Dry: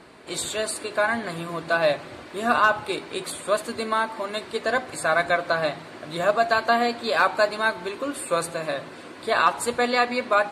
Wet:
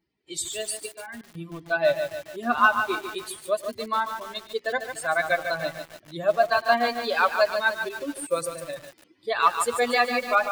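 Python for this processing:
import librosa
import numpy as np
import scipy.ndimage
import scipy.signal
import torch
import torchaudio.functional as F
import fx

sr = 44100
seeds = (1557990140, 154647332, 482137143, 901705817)

p1 = fx.bin_expand(x, sr, power=2.0)
p2 = fx.low_shelf(p1, sr, hz=140.0, db=-9.0)
p3 = fx.level_steps(p2, sr, step_db=21, at=(0.86, 1.37))
p4 = p3 + fx.echo_single(p3, sr, ms=108, db=-20.0, dry=0)
p5 = fx.echo_crushed(p4, sr, ms=146, feedback_pct=55, bits=7, wet_db=-7.0)
y = p5 * 10.0 ** (3.0 / 20.0)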